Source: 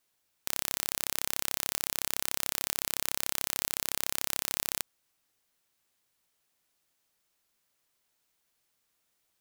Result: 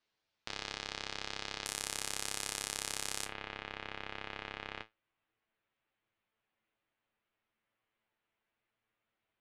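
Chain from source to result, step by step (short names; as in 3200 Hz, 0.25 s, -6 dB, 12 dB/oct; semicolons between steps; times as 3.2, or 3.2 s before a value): LPF 4900 Hz 24 dB/oct, from 1.66 s 10000 Hz, from 3.25 s 2900 Hz; resonator 110 Hz, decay 0.17 s, harmonics all, mix 80%; gain +3.5 dB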